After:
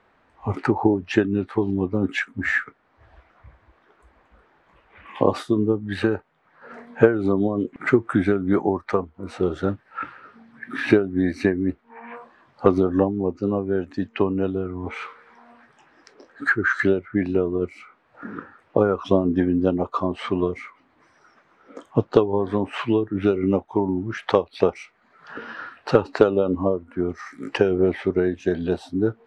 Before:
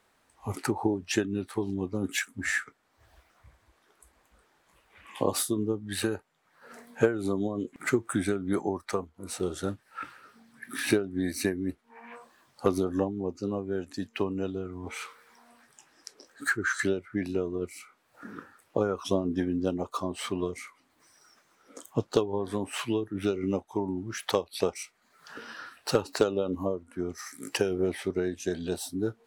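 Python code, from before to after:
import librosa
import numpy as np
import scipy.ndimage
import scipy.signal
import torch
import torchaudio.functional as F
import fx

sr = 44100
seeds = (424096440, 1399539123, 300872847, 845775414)

y = scipy.signal.sosfilt(scipy.signal.butter(2, 2200.0, 'lowpass', fs=sr, output='sos'), x)
y = y * librosa.db_to_amplitude(8.5)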